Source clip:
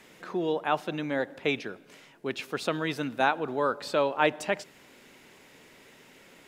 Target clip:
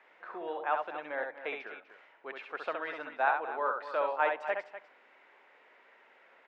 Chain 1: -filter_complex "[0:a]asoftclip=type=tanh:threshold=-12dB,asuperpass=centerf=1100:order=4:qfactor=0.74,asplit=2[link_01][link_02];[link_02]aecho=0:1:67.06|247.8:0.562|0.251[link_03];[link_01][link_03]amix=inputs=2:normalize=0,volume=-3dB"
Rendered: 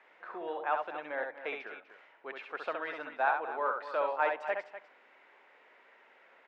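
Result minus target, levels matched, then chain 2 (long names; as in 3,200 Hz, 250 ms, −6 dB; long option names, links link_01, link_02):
soft clipping: distortion +13 dB
-filter_complex "[0:a]asoftclip=type=tanh:threshold=-4.5dB,asuperpass=centerf=1100:order=4:qfactor=0.74,asplit=2[link_01][link_02];[link_02]aecho=0:1:67.06|247.8:0.562|0.251[link_03];[link_01][link_03]amix=inputs=2:normalize=0,volume=-3dB"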